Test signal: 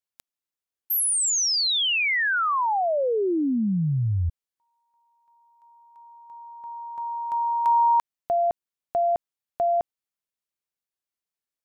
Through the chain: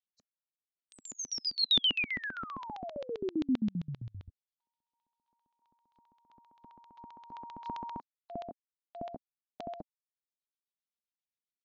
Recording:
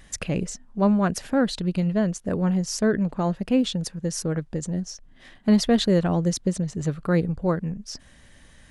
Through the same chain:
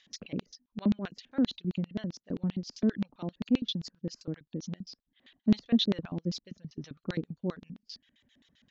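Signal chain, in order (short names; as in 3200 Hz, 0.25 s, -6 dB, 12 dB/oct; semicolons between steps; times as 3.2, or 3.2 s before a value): nonlinear frequency compression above 3900 Hz 1.5:1; reverb removal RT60 0.96 s; LFO band-pass square 7.6 Hz 250–3600 Hz; elliptic low-pass 6800 Hz, stop band 40 dB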